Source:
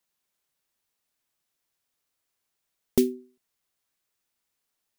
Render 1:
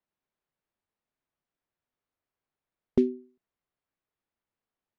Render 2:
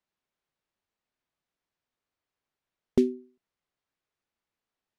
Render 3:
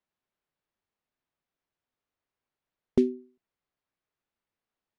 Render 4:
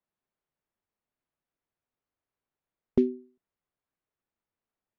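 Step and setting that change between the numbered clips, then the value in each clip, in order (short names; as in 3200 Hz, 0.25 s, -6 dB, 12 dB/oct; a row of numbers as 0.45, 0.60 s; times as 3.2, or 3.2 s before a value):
tape spacing loss, at 10 kHz: 38, 21, 29, 46 dB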